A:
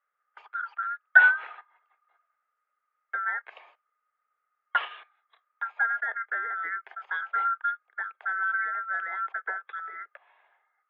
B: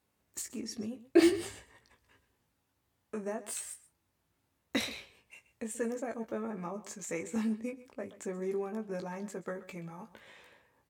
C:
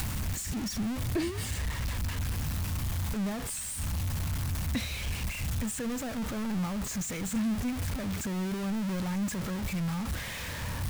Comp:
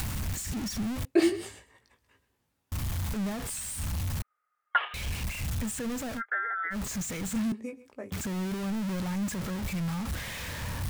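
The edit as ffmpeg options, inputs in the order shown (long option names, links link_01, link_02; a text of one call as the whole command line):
ffmpeg -i take0.wav -i take1.wav -i take2.wav -filter_complex "[1:a]asplit=2[link_01][link_02];[0:a]asplit=2[link_03][link_04];[2:a]asplit=5[link_05][link_06][link_07][link_08][link_09];[link_05]atrim=end=1.052[link_10];[link_01]atrim=start=1.048:end=2.722[link_11];[link_06]atrim=start=2.718:end=4.222[link_12];[link_03]atrim=start=4.218:end=4.942[link_13];[link_07]atrim=start=4.938:end=6.22[link_14];[link_04]atrim=start=6.16:end=6.76[link_15];[link_08]atrim=start=6.7:end=7.522[link_16];[link_02]atrim=start=7.518:end=8.122[link_17];[link_09]atrim=start=8.118[link_18];[link_10][link_11]acrossfade=duration=0.004:curve1=hsin:curve2=hsin[link_19];[link_19][link_12]acrossfade=duration=0.004:curve1=hsin:curve2=hsin[link_20];[link_20][link_13]acrossfade=duration=0.004:curve1=hsin:curve2=hsin[link_21];[link_21][link_14]acrossfade=duration=0.004:curve1=hsin:curve2=hsin[link_22];[link_22][link_15]acrossfade=duration=0.06:curve1=tri:curve2=tri[link_23];[link_23][link_16]acrossfade=duration=0.06:curve1=tri:curve2=tri[link_24];[link_24][link_17]acrossfade=duration=0.004:curve1=hsin:curve2=hsin[link_25];[link_25][link_18]acrossfade=duration=0.004:curve1=hsin:curve2=hsin" out.wav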